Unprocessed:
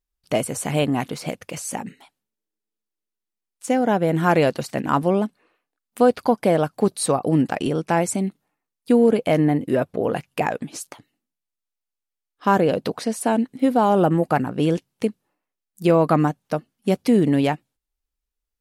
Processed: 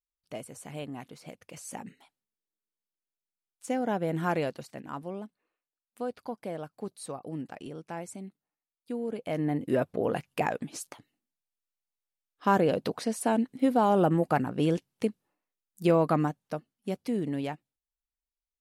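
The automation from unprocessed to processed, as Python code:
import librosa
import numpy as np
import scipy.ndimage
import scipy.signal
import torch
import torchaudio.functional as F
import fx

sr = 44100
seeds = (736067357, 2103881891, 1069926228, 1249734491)

y = fx.gain(x, sr, db=fx.line((1.22, -18.0), (1.86, -10.0), (4.24, -10.0), (4.88, -18.5), (9.04, -18.5), (9.72, -6.0), (15.86, -6.0), (17.01, -13.5)))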